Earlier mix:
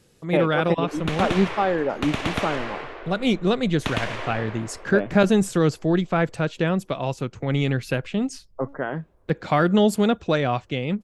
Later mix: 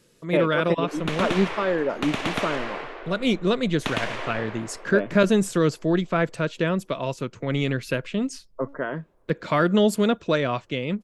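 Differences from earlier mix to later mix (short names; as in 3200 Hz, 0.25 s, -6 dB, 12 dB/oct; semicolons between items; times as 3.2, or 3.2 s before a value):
speech: add Butterworth band-stop 780 Hz, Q 5.8; master: add bell 62 Hz -12.5 dB 1.5 oct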